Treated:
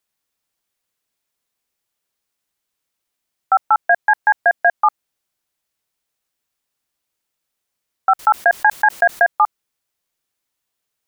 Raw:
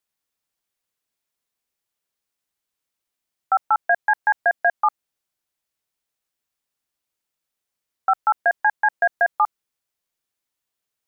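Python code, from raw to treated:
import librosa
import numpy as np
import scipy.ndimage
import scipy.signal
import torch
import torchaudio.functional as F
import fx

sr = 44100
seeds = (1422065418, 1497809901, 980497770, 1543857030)

y = fx.env_flatten(x, sr, amount_pct=70, at=(8.19, 9.25))
y = F.gain(torch.from_numpy(y), 4.5).numpy()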